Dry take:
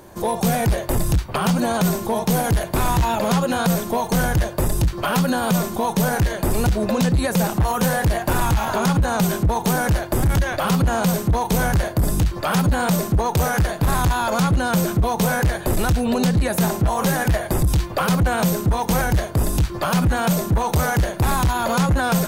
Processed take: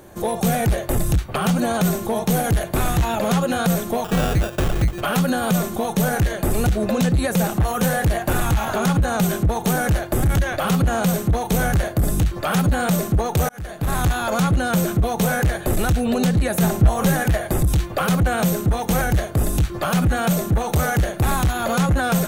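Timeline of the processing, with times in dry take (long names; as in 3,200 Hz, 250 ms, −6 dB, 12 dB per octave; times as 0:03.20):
0:04.04–0:05.01: sample-rate reduction 2,100 Hz
0:13.49–0:14.04: fade in
0:16.62–0:17.20: low-shelf EQ 140 Hz +7.5 dB
whole clip: parametric band 4,900 Hz −6 dB 0.29 octaves; notch filter 970 Hz, Q 6.9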